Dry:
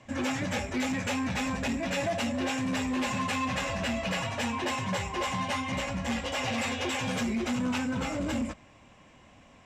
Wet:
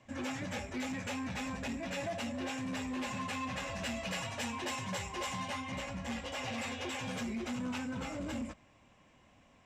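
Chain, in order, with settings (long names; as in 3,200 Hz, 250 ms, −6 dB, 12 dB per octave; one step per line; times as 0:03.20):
0:03.75–0:05.50: high-shelf EQ 4,000 Hz +7 dB
level −8 dB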